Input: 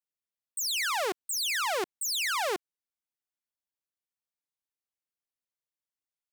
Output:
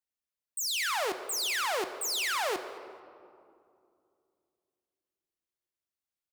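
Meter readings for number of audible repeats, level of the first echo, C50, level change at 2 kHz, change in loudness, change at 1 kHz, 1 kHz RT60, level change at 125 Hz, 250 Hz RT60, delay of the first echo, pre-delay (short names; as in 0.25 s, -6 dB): 1, -23.0 dB, 10.0 dB, -1.0 dB, -1.0 dB, -1.0 dB, 2.3 s, n/a, 3.3 s, 0.219 s, 4 ms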